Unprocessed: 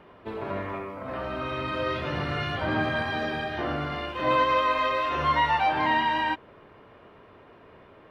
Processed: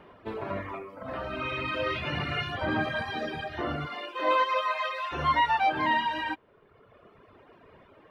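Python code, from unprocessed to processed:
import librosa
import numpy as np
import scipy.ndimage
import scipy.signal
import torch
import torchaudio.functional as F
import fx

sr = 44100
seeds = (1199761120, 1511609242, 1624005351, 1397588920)

y = fx.dereverb_blind(x, sr, rt60_s=1.5)
y = fx.peak_eq(y, sr, hz=2500.0, db=8.0, octaves=0.64, at=(1.33, 2.41))
y = fx.highpass(y, sr, hz=fx.line((3.86, 220.0), (5.11, 760.0)), slope=24, at=(3.86, 5.11), fade=0.02)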